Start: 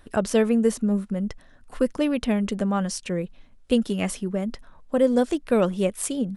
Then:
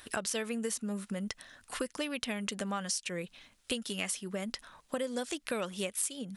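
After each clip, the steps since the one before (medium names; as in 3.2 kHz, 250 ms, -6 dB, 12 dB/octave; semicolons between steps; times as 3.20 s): high-pass 78 Hz 6 dB/octave; tilt shelf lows -9 dB, about 1.2 kHz; compression 5:1, threshold -36 dBFS, peak gain reduction 17.5 dB; trim +3 dB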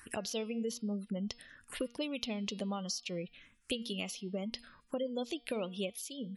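spectral gate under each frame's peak -25 dB strong; touch-sensitive phaser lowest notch 570 Hz, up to 1.7 kHz, full sweep at -33.5 dBFS; de-hum 237.2 Hz, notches 22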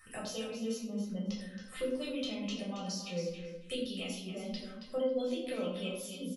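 feedback comb 260 Hz, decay 0.16 s, harmonics all, mix 80%; on a send: feedback delay 274 ms, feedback 16%, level -9 dB; on the sum: simulated room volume 910 m³, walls furnished, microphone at 6.2 m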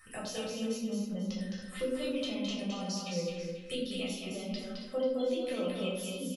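delay 214 ms -4.5 dB; trim +1 dB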